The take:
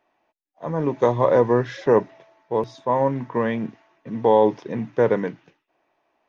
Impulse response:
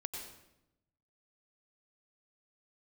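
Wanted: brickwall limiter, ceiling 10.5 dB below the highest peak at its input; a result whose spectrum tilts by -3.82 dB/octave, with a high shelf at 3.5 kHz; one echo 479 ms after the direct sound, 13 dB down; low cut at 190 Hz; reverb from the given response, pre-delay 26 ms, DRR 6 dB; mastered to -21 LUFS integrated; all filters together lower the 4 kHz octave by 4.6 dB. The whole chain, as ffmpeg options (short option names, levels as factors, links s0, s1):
-filter_complex "[0:a]highpass=190,highshelf=f=3500:g=-4.5,equalizer=f=4000:t=o:g=-3,alimiter=limit=0.168:level=0:latency=1,aecho=1:1:479:0.224,asplit=2[s0][s1];[1:a]atrim=start_sample=2205,adelay=26[s2];[s1][s2]afir=irnorm=-1:irlink=0,volume=0.531[s3];[s0][s3]amix=inputs=2:normalize=0,volume=2"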